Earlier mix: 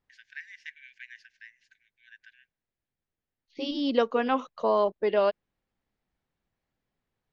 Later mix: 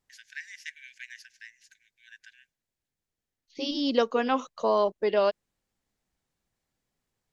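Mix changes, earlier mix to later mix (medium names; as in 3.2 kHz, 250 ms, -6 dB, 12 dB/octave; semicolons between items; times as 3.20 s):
first voice: add tilt EQ +1.5 dB/octave; master: remove low-pass 3.5 kHz 12 dB/octave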